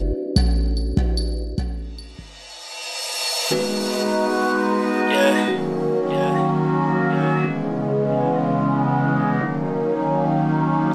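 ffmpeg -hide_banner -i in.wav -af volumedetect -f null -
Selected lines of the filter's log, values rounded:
mean_volume: -20.4 dB
max_volume: -3.2 dB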